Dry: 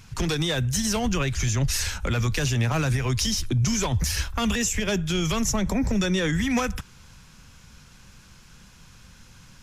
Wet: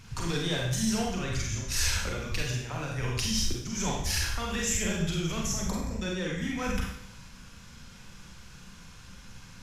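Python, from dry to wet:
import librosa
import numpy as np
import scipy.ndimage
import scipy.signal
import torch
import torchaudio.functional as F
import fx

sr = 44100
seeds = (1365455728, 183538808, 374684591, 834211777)

y = fx.high_shelf(x, sr, hz=8000.0, db=-4.5)
y = fx.over_compress(y, sr, threshold_db=-27.0, ratio=-0.5)
y = fx.rev_schroeder(y, sr, rt60_s=0.7, comb_ms=32, drr_db=-2.0)
y = y * librosa.db_to_amplitude(-6.0)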